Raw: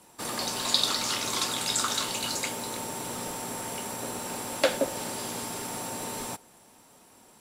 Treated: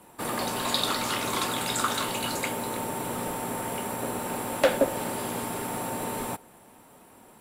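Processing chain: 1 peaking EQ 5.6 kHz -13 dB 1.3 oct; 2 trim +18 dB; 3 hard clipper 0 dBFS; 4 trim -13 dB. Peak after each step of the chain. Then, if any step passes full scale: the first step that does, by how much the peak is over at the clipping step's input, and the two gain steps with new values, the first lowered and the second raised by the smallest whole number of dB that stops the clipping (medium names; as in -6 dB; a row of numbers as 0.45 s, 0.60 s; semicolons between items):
-10.5 dBFS, +7.5 dBFS, 0.0 dBFS, -13.0 dBFS; step 2, 7.5 dB; step 2 +10 dB, step 4 -5 dB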